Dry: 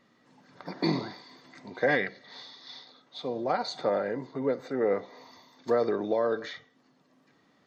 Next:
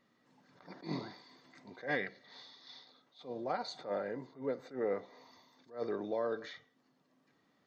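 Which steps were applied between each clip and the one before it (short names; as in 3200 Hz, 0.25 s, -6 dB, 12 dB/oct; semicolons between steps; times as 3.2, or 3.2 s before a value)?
attack slew limiter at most 190 dB/s; gain -8 dB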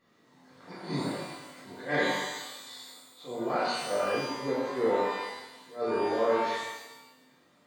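shimmer reverb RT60 1 s, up +12 st, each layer -8 dB, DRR -8 dB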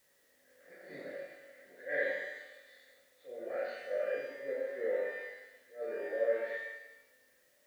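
double band-pass 990 Hz, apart 1.7 oct; requantised 12-bit, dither triangular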